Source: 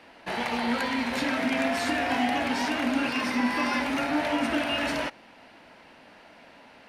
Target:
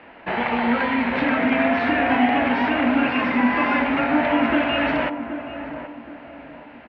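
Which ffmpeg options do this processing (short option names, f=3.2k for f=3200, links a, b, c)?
-filter_complex "[0:a]lowpass=f=2.7k:w=0.5412,lowpass=f=2.7k:w=1.3066,asplit=2[a][b];[b]adelay=776,lowpass=f=1.1k:p=1,volume=-9dB,asplit=2[c][d];[d]adelay=776,lowpass=f=1.1k:p=1,volume=0.38,asplit=2[e][f];[f]adelay=776,lowpass=f=1.1k:p=1,volume=0.38,asplit=2[g][h];[h]adelay=776,lowpass=f=1.1k:p=1,volume=0.38[i];[a][c][e][g][i]amix=inputs=5:normalize=0,volume=7dB"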